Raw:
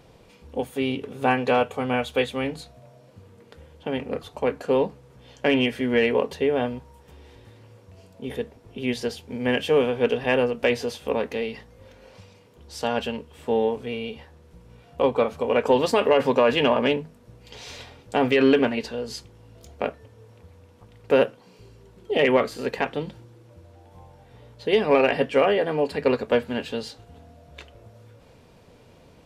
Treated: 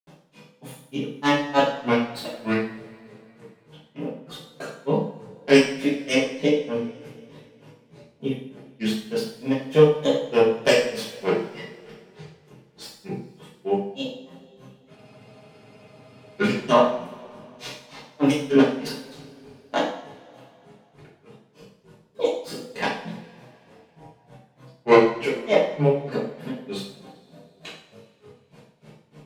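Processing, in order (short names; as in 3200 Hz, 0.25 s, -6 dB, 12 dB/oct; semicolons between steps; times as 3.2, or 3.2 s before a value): tracing distortion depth 0.15 ms; resonant low shelf 110 Hz -11.5 dB, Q 3; grains 0.16 s, grains 3.3/s, pitch spread up and down by 3 st; two-slope reverb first 0.53 s, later 3 s, from -22 dB, DRR -8.5 dB; spectral freeze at 14.98, 1.43 s; gain -1.5 dB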